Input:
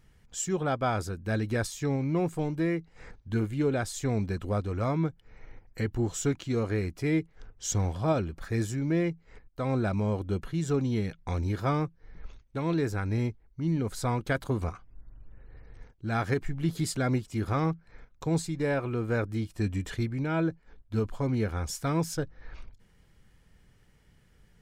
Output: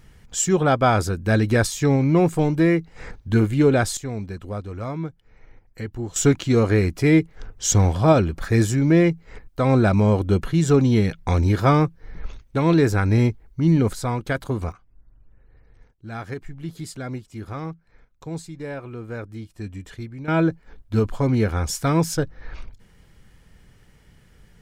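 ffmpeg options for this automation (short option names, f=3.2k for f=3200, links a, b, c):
-af "asetnsamples=n=441:p=0,asendcmd='3.97 volume volume -1dB;6.16 volume volume 11dB;13.93 volume volume 4dB;14.72 volume volume -4dB;20.28 volume volume 8.5dB',volume=10.5dB"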